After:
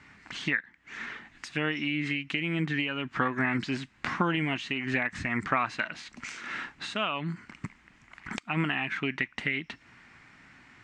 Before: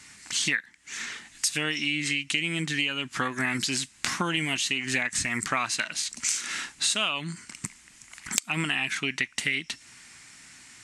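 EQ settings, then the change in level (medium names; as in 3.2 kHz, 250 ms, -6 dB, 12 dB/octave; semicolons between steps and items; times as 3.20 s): low-pass 1.8 kHz 12 dB/octave; +2.0 dB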